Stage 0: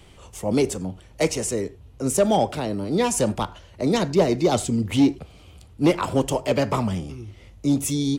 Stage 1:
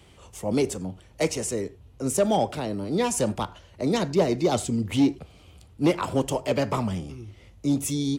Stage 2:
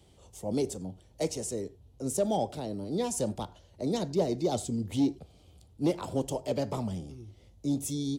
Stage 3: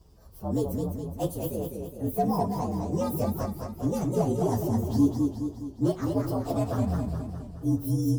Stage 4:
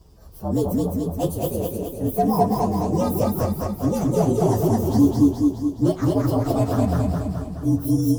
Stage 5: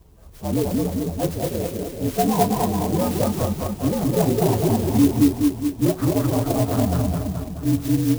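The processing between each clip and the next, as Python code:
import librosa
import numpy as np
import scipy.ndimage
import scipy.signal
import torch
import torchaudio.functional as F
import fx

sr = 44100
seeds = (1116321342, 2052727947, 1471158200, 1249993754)

y1 = scipy.signal.sosfilt(scipy.signal.butter(2, 47.0, 'highpass', fs=sr, output='sos'), x)
y1 = y1 * 10.0 ** (-3.0 / 20.0)
y2 = fx.band_shelf(y1, sr, hz=1700.0, db=-8.5, octaves=1.7)
y2 = y2 * 10.0 ** (-6.0 / 20.0)
y3 = fx.partial_stretch(y2, sr, pct=118)
y3 = fx.low_shelf(y3, sr, hz=250.0, db=7.0)
y3 = fx.echo_warbled(y3, sr, ms=208, feedback_pct=53, rate_hz=2.8, cents=129, wet_db=-4.5)
y3 = y3 * 10.0 ** (2.0 / 20.0)
y4 = fx.echo_feedback(y3, sr, ms=215, feedback_pct=42, wet_db=-4)
y4 = y4 * 10.0 ** (5.5 / 20.0)
y5 = fx.clock_jitter(y4, sr, seeds[0], jitter_ms=0.072)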